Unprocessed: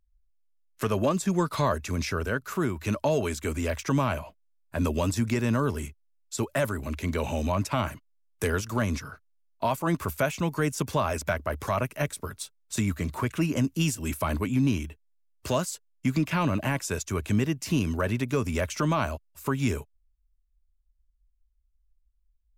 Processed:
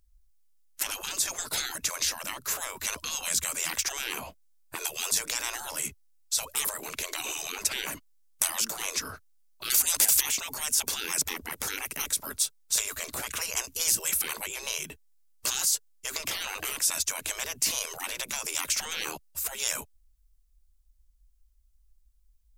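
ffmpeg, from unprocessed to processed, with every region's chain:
-filter_complex "[0:a]asettb=1/sr,asplit=3[s0][s1][s2];[s0]atrim=end=9.704[s3];[s1]atrim=start=9.7:end=10.21,asetpts=PTS-STARTPTS,afade=t=in:d=0.004:c=qsin,afade=t=out:st=0.506:d=0.004:c=qsin,lowpass=9100,acontrast=85,aemphasis=mode=production:type=50fm[s4];[s2]atrim=start=10.206[s5];[s3][s4]acrossfade=d=0.004:c1=hsin:c2=qsin[s6];[s6][s5]acrossfade=d=0.004:c1=qsin:c2=hsin,afftfilt=real='re*lt(hypot(re,im),0.0447)':imag='im*lt(hypot(re,im),0.0447)':win_size=1024:overlap=0.75,bass=f=250:g=0,treble=f=4000:g=9,volume=1.88"

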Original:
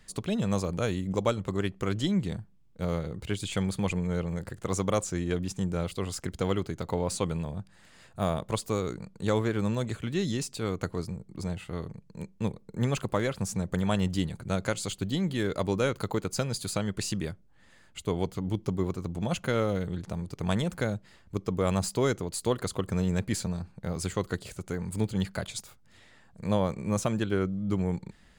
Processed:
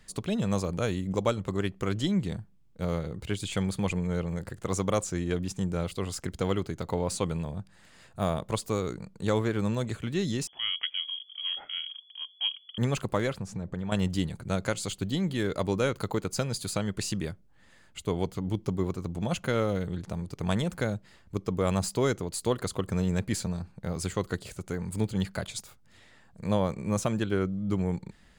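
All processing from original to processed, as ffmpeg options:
-filter_complex "[0:a]asettb=1/sr,asplit=3[s0][s1][s2];[s0]atrim=end=10.474[s3];[s1]atrim=start=10.47:end=12.78,asetpts=PTS-STARTPTS,afade=t=in:d=0.004:c=qsin,afade=t=out:st=2.306:d=0.004:c=qsin,equalizer=f=650:t=o:w=0.69:g=-5,lowpass=f=2900:t=q:w=0.5098,lowpass=f=2900:t=q:w=0.6013,lowpass=f=2900:t=q:w=0.9,lowpass=f=2900:t=q:w=2.563,afreqshift=-3400[s4];[s2]atrim=start=12.776[s5];[s3][s4]acrossfade=d=0.004:c1=hsin:c2=qsin[s6];[s6][s5]acrossfade=d=0.004:c1=qsin:c2=hsin,asettb=1/sr,asplit=3[s7][s8][s9];[s7]atrim=end=13.384[s10];[s8]atrim=start=13.38:end=13.92,asetpts=PTS-STARTPTS,afade=t=in:d=0.004:c=qsin,afade=t=out:st=0.536:d=0.004:c=qsin,aemphasis=mode=reproduction:type=75fm,acompressor=threshold=0.0316:ratio=5:attack=3.2:release=140:knee=1:detection=peak[s11];[s9]atrim=start=13.916[s12];[s10][s11]acrossfade=d=0.004:c1=hsin:c2=qsin[s13];[s13][s12]acrossfade=d=0.004:c1=qsin:c2=hsin"

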